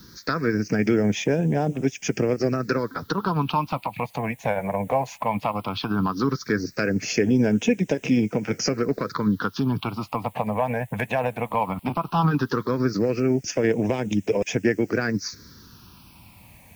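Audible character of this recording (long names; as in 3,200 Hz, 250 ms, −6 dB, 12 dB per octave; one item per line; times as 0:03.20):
a quantiser's noise floor 10 bits, dither triangular
phaser sweep stages 6, 0.16 Hz, lowest notch 340–1,200 Hz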